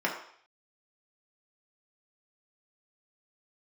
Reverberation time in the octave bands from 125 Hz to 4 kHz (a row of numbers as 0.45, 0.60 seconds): 0.35, 0.45, 0.55, 0.60, 0.60, 0.65 seconds